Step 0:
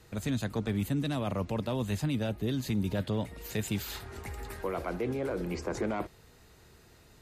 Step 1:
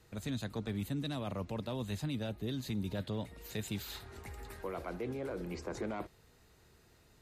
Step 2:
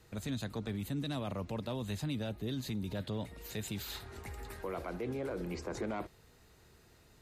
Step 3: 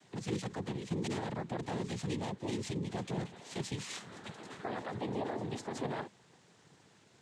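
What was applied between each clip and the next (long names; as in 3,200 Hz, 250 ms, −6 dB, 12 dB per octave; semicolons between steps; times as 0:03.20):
dynamic equaliser 3,900 Hz, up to +6 dB, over −60 dBFS, Q 5.6; level −6.5 dB
brickwall limiter −31.5 dBFS, peak gain reduction 4.5 dB; level +2 dB
cochlear-implant simulation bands 6; level +1 dB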